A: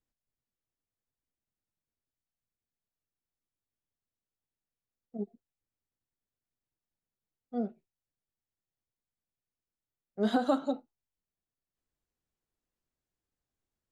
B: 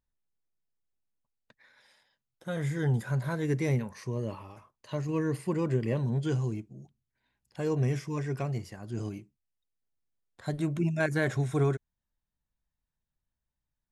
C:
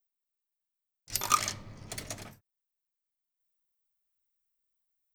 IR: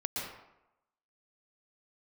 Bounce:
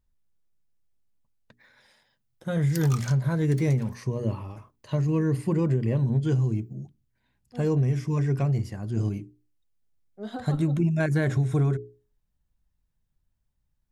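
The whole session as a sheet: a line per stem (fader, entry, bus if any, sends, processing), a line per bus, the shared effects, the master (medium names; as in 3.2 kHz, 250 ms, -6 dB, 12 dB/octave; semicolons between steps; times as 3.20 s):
-8.0 dB, 0.00 s, no send, none
+2.0 dB, 0.00 s, no send, bass shelf 270 Hz +11.5 dB; hum notches 60/120/180/240/300/360/420 Hz
-5.0 dB, 1.60 s, no send, high-pass 170 Hz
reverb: none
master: compression, threshold -20 dBFS, peak gain reduction 8 dB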